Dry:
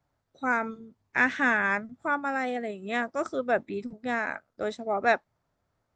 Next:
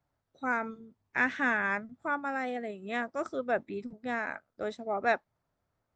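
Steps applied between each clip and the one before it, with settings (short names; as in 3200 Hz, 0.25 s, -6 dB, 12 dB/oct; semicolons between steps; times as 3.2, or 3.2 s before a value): high shelf 7000 Hz -6 dB; gain -4 dB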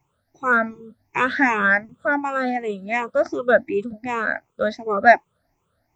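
moving spectral ripple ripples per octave 0.72, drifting +2.7 Hz, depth 19 dB; gain +7.5 dB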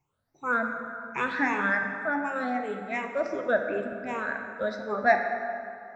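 plate-style reverb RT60 2.6 s, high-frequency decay 0.55×, DRR 3.5 dB; gain -9 dB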